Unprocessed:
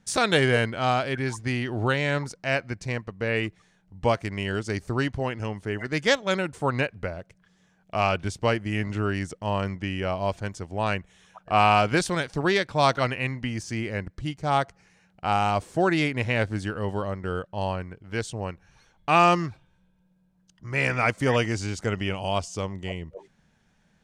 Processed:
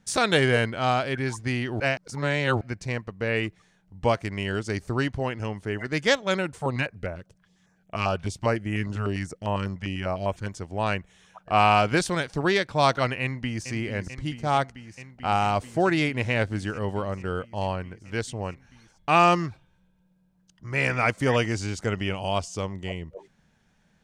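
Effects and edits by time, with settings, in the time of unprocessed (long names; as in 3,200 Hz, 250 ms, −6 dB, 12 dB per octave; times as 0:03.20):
0:01.80–0:02.61: reverse
0:06.56–0:10.48: notch on a step sequencer 10 Hz 320–4,600 Hz
0:13.21–0:13.70: delay throw 440 ms, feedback 85%, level −11 dB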